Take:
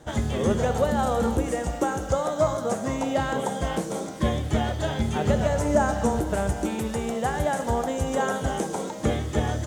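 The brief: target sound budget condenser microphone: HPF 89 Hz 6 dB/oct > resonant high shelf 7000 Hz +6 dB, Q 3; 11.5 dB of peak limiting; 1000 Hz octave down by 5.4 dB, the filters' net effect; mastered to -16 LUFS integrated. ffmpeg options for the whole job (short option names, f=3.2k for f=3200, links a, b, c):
-af "equalizer=f=1k:t=o:g=-7.5,alimiter=limit=-21dB:level=0:latency=1,highpass=f=89:p=1,highshelf=f=7k:t=q:w=3:g=6,volume=14.5dB"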